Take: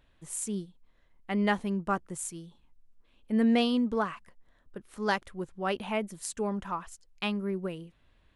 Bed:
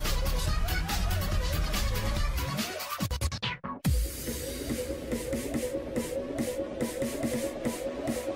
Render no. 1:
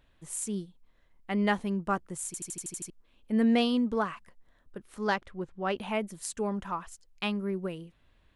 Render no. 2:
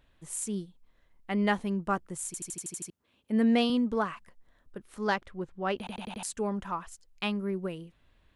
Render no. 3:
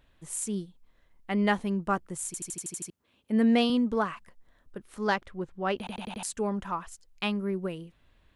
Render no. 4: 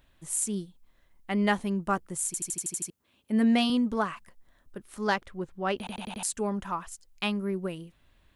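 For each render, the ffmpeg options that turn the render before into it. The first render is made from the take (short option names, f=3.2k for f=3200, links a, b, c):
-filter_complex "[0:a]asettb=1/sr,asplit=3[a][b][c];[a]atrim=end=5.074[d];[b]atrim=start=5.07:end=5.77,asetpts=PTS-STARTPTS,afade=t=in:d=0.004:c=qsin,afade=t=out:st=0.696:d=0.004:c=qsin,adynamicsmooth=sensitivity=1:basefreq=5.2k[e];[c]atrim=start=5.766[f];[d][e]acrossfade=d=0.004:c1=hsin:c2=qsin[g];[g][f]acrossfade=d=0.004:c1=qsin:c2=hsin,asplit=9[h][i][j][k][l][m][n][o][p];[h]atrim=end=2.342[q];[i]atrim=start=2.258:end=2.342[r];[j]atrim=start=2.258:end=2.342[s];[k]atrim=start=2.258:end=2.342[t];[l]atrim=start=2.258:end=2.342[u];[m]atrim=start=2.258:end=2.342[v];[n]atrim=start=2.258:end=2.342[w];[o]atrim=start=2.258:end=2.342[x];[p]atrim=start=2.898[y];[q][r]acrossfade=d=0.004:c1=hsin:c2=hsin[z];[z][s]acrossfade=d=0.004:c1=hsin:c2=hsin[aa];[aa][t]acrossfade=d=0.004:c1=hsin:c2=hsin[ab];[ab][u]acrossfade=d=0.004:c1=hsin:c2=hsin[ac];[ac][v]acrossfade=d=0.004:c1=hsin:c2=hsin[ad];[ad][w]acrossfade=d=0.004:c1=hsin:c2=hsin[ae];[ae][x]acrossfade=d=0.004:c1=hsin:c2=hsin[af];[af][y]acrossfade=d=0.004:c1=hsin:c2=hsin"
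-filter_complex "[0:a]asettb=1/sr,asplit=3[a][b][c];[a]atrim=end=2.544[d];[b]atrim=start=2.54:end=3.7,asetpts=PTS-STARTPTS,afade=t=in:d=0.004:c=qsin,afade=t=out:st=1.156:d=0.004:c=qsin,highpass=f=77:w=0.5412,highpass=f=77:w=1.3066[e];[c]atrim=start=3.696[f];[d][e]acrossfade=d=0.004:c1=hsin:c2=qsin[g];[g][f]acrossfade=d=0.004:c1=qsin:c2=hsin,asplit=6[h][i][j][k][l][m];[h]atrim=end=5.872[n];[i]atrim=start=5.778:end=5.872[o];[j]atrim=start=5.778:end=5.872[p];[k]atrim=start=5.778:end=5.872[q];[l]atrim=start=5.778:end=5.872[r];[m]atrim=start=6.228[s];[n][o]acrossfade=d=0.004:c1=hsin:c2=hsin[t];[t][p]acrossfade=d=0.004:c1=hsin:c2=hsin[u];[u][q]acrossfade=d=0.004:c1=hsin:c2=hsin[v];[v][r]acrossfade=d=0.004:c1=hsin:c2=hsin[w];[w][s]acrossfade=d=0.004:c1=hsin:c2=hsin"
-af "volume=1.5dB"
-af "highshelf=f=7k:g=7.5,bandreject=f=470:w=12"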